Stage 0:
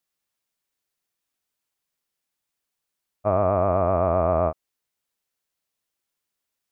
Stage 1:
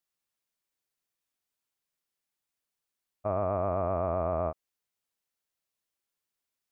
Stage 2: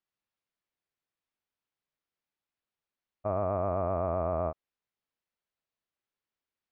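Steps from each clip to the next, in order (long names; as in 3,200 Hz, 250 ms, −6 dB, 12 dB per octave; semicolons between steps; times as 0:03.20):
brickwall limiter −13.5 dBFS, peak gain reduction 4.5 dB; level −5 dB
high-frequency loss of the air 200 metres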